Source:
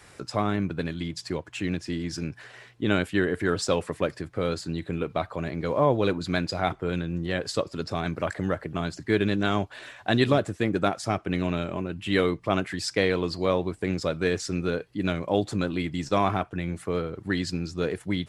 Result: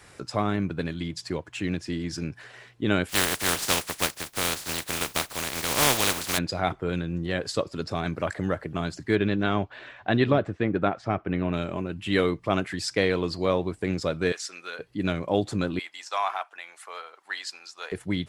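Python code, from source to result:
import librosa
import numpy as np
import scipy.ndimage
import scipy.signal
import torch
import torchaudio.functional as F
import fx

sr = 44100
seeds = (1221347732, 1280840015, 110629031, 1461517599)

y = fx.spec_flatten(x, sr, power=0.2, at=(3.08, 6.37), fade=0.02)
y = fx.lowpass(y, sr, hz=fx.line((9.15, 3900.0), (11.52, 2100.0)), slope=12, at=(9.15, 11.52), fade=0.02)
y = fx.highpass(y, sr, hz=1100.0, slope=12, at=(14.32, 14.79))
y = fx.cheby1_highpass(y, sr, hz=810.0, order=3, at=(15.79, 17.92))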